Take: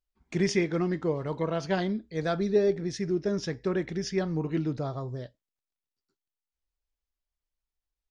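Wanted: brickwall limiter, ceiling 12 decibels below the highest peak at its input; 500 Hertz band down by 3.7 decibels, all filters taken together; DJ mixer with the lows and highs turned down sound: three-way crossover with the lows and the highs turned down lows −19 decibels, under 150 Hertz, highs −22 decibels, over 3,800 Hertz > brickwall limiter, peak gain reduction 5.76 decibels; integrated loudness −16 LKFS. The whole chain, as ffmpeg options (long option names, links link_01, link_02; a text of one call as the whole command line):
ffmpeg -i in.wav -filter_complex "[0:a]equalizer=frequency=500:width_type=o:gain=-5,alimiter=level_in=3.5dB:limit=-24dB:level=0:latency=1,volume=-3.5dB,acrossover=split=150 3800:gain=0.112 1 0.0794[link_01][link_02][link_03];[link_01][link_02][link_03]amix=inputs=3:normalize=0,volume=24dB,alimiter=limit=-6.5dB:level=0:latency=1" out.wav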